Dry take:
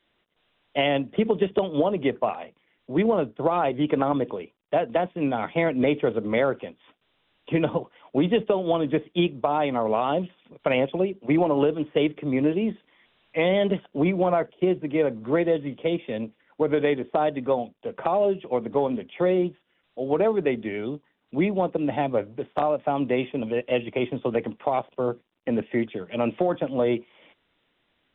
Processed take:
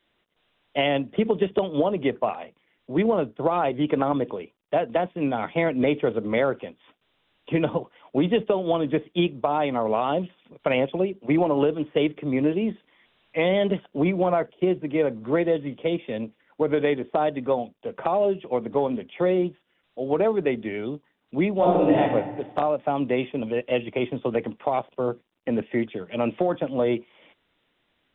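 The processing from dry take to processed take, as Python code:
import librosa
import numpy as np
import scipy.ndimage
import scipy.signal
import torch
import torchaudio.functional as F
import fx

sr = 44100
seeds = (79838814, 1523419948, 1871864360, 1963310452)

y = fx.reverb_throw(x, sr, start_s=21.55, length_s=0.44, rt60_s=1.2, drr_db=-5.5)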